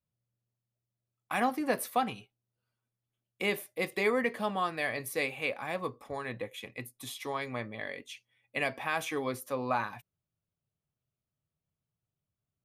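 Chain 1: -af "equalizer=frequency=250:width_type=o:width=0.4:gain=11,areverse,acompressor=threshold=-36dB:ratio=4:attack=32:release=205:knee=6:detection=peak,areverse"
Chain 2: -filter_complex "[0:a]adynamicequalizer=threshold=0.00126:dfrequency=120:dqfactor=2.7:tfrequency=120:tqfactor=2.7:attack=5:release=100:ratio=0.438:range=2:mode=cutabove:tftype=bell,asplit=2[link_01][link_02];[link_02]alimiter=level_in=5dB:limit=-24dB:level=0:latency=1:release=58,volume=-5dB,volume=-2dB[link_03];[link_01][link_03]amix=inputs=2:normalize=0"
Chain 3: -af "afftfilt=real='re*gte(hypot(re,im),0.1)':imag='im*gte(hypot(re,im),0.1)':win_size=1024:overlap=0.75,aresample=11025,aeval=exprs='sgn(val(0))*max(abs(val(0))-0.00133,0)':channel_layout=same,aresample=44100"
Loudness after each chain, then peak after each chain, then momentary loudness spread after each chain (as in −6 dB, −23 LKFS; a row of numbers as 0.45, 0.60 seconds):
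−38.0, −31.0, −35.5 LKFS; −22.0, −15.5, −18.0 dBFS; 6, 10, 15 LU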